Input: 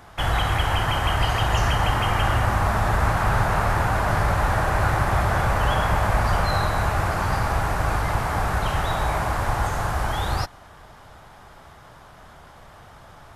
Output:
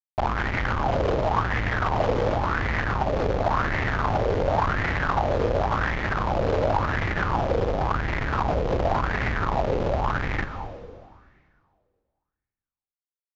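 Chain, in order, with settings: low shelf 93 Hz +3.5 dB; de-hum 187.2 Hz, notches 10; in parallel at -2 dB: compressor 6:1, threshold -32 dBFS, peak gain reduction 17.5 dB; on the sum: companded quantiser 4-bit; Schmitt trigger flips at -24.5 dBFS; air absorption 140 m; on a send at -7.5 dB: reverb RT60 2.0 s, pre-delay 0.118 s; on the sum: downsampling 16000 Hz; LFO bell 0.92 Hz 470–2000 Hz +17 dB; gain -8 dB

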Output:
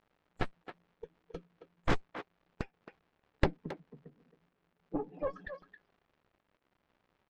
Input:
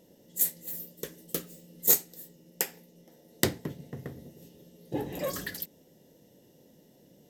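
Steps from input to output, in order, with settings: per-bin expansion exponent 2; elliptic high-pass 160 Hz; added harmonics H 4 -24 dB, 6 -8 dB, 7 -11 dB, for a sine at -7.5 dBFS; crackle 200/s -51 dBFS; tape spacing loss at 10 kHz 43 dB; speakerphone echo 0.27 s, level -10 dB; gain +3.5 dB

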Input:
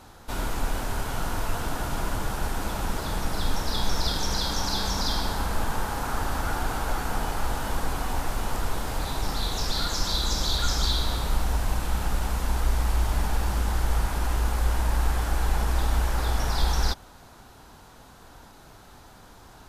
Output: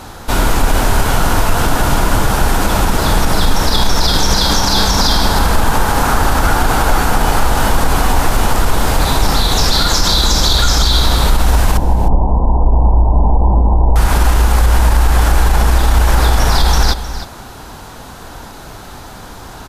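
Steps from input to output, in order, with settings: 11.77–13.96 Chebyshev low-pass 1000 Hz, order 6; echo 0.31 s -16.5 dB; maximiser +18 dB; gain -1 dB

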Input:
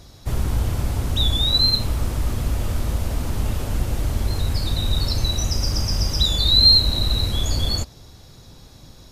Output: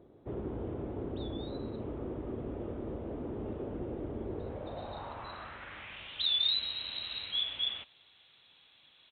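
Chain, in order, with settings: band-pass sweep 380 Hz -> 3000 Hz, 4.34–6.12; downsampling 8000 Hz

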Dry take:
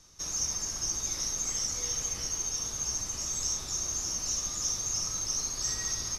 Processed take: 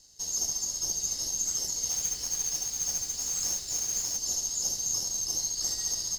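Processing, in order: minimum comb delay 0.44 ms; band shelf 5200 Hz +14 dB; notch 2400 Hz, Q 6; 1.9–4.17 modulation noise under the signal 15 dB; gain -8.5 dB

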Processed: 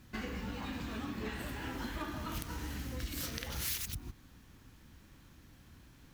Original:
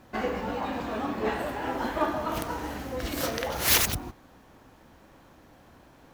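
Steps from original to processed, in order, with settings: passive tone stack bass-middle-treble 6-0-2; compressor 6:1, threshold -50 dBFS, peak gain reduction 17 dB; gain +14.5 dB

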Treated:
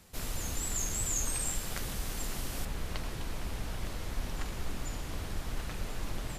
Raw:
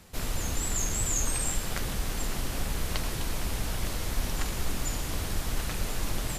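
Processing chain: high shelf 5000 Hz +3.5 dB, from 2.65 s -7.5 dB; gain -5.5 dB

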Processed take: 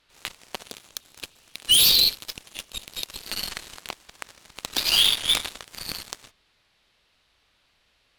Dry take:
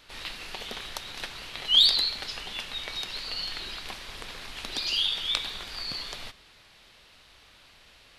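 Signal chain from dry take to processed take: wavefolder -20.5 dBFS; spectral delete 0.68–3.25, 540–2300 Hz; added harmonics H 7 -16 dB, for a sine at -17 dBFS; gain +8.5 dB

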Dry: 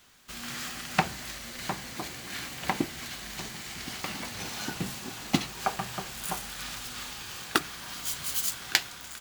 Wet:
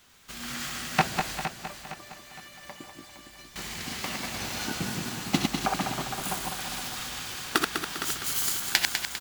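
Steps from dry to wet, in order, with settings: regenerating reverse delay 0.1 s, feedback 65%, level -3 dB; 1.45–3.56 resonator 590 Hz, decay 0.17 s, harmonics all, mix 90%; feedback echo 0.462 s, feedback 40%, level -10 dB

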